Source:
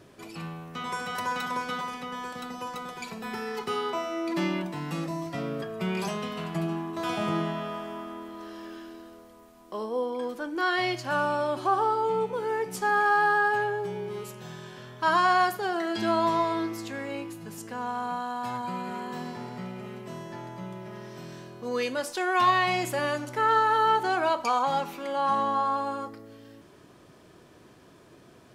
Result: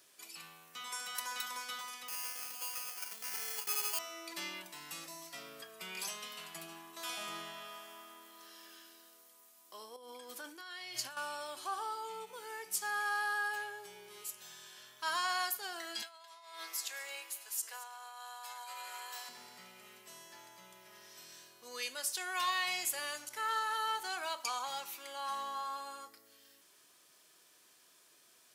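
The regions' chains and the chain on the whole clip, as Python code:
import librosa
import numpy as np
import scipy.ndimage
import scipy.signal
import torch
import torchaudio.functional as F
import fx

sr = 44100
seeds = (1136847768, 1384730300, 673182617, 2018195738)

y = fx.chain(x, sr, fx.peak_eq(hz=240.0, db=-6.0, octaves=0.28),
    fx.sample_hold(seeds[0], rate_hz=3800.0, jitter_pct=0), at=(2.08, 3.99))
y = fx.chain(y, sr, fx.peak_eq(hz=77.0, db=9.5, octaves=2.3),
    fx.over_compress(threshold_db=-33.0, ratio=-1.0), at=(9.96, 11.17))
y = fx.chain(y, sr, fx.highpass(hz=500.0, slope=24),
    fx.over_compress(threshold_db=-36.0, ratio=-1.0),
    fx.echo_single(ms=219, db=-16.5), at=(16.02, 19.29))
y = np.diff(y, prepend=0.0)
y = fx.end_taper(y, sr, db_per_s=420.0)
y = F.gain(torch.from_numpy(y), 3.0).numpy()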